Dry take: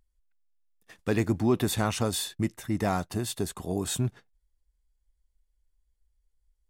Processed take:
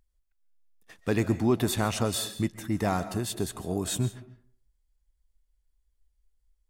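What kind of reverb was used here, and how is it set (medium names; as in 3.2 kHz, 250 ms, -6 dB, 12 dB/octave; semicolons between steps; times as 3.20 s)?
algorithmic reverb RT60 0.51 s, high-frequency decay 0.55×, pre-delay 100 ms, DRR 13 dB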